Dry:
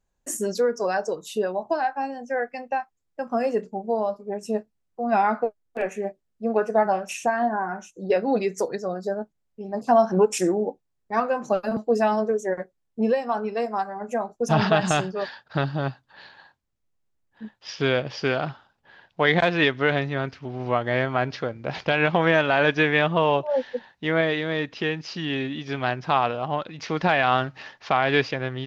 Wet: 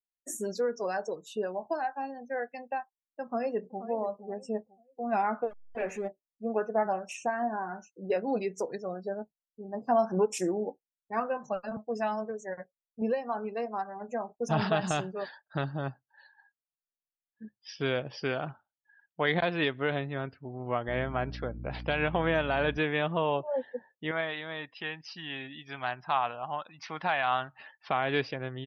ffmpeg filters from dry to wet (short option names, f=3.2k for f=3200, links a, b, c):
-filter_complex "[0:a]asplit=2[a][b];[b]afade=t=in:st=3.22:d=0.01,afade=t=out:st=3.84:d=0.01,aecho=0:1:480|960|1440:0.223872|0.0783552|0.0274243[c];[a][c]amix=inputs=2:normalize=0,asettb=1/sr,asplit=3[d][e][f];[d]atrim=end=5.424[g];[e]atrim=start=5.42:end=6.08,asetpts=PTS-STARTPTS,afade=t=in:d=0.004:c=qsin,afade=t=out:st=0.656:d=0.004:c=qsin,aeval=exprs='val(0)+0.5*0.0211*sgn(val(0))':c=same[h];[f]atrim=start=6.076[i];[g][h]acrossfade=d=0.004:c1=hsin:c2=qsin[j];[j][i]acrossfade=d=0.004:c1=qsin:c2=hsin,asettb=1/sr,asplit=3[k][l][m];[k]atrim=end=11.374[n];[l]atrim=start=11.37:end=13.02,asetpts=PTS-STARTPTS,afade=t=in:d=0.004:c=qsin,afade=t=out:st=1.646:d=0.004:c=qsin,equalizer=f=340:w=1.5:g=-10.5[o];[m]atrim=start=13.016[p];[n][o]acrossfade=d=0.004:c1=hsin:c2=qsin[q];[q][p]acrossfade=d=0.004:c1=qsin:c2=hsin,asettb=1/sr,asplit=3[r][s][t];[r]atrim=end=20.884[u];[s]atrim=start=20.88:end=22.78,asetpts=PTS-STARTPTS,afade=t=in:d=0.004:c=qsin,afade=t=out:st=1.896:d=0.004:c=qsin,aeval=exprs='val(0)+0.0251*(sin(2*PI*60*n/s)+sin(2*PI*2*60*n/s)/2+sin(2*PI*3*60*n/s)/3+sin(2*PI*4*60*n/s)/4+sin(2*PI*5*60*n/s)/5)':c=same[v];[t]atrim=start=22.776[w];[u][v]acrossfade=d=0.004:c1=hsin:c2=qsin[x];[x][w]acrossfade=d=0.004:c1=qsin:c2=hsin,asettb=1/sr,asplit=3[y][z][aa];[y]atrim=end=24.114[ab];[z]atrim=start=24.11:end=27.59,asetpts=PTS-STARTPTS,afade=t=in:d=0.004:c=qsin,afade=t=out:st=3.476:d=0.004:c=qsin,lowshelf=f=600:t=q:w=1.5:g=-7.5[ac];[aa]atrim=start=27.586[ad];[ab][ac]acrossfade=d=0.004:c1=hsin:c2=qsin[ae];[ae][ad]acrossfade=d=0.004:c1=qsin:c2=hsin,afftdn=nr=30:nf=-43,adynamicequalizer=threshold=0.02:dfrequency=1900:dqfactor=1.5:tfrequency=1900:tqfactor=1.5:attack=5:release=100:ratio=0.375:range=2:mode=cutabove:tftype=bell,volume=-7.5dB"